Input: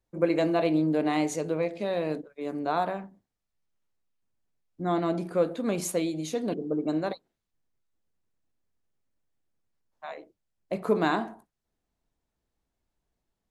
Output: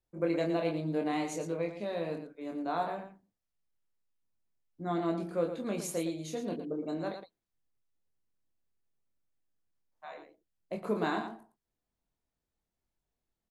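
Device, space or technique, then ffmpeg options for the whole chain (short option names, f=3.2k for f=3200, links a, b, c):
slapback doubling: -filter_complex "[0:a]asplit=3[a][b][c];[b]adelay=24,volume=-4.5dB[d];[c]adelay=114,volume=-8.5dB[e];[a][d][e]amix=inputs=3:normalize=0,volume=-7.5dB"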